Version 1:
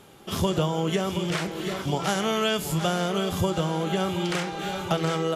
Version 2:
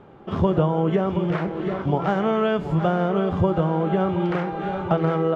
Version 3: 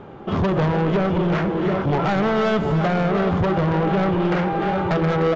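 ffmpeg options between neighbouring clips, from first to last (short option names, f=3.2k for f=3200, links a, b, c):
-af "lowpass=1.3k,volume=5dB"
-af "asoftclip=type=tanh:threshold=-24.5dB,aecho=1:1:301:0.299,aresample=16000,aresample=44100,volume=8dB"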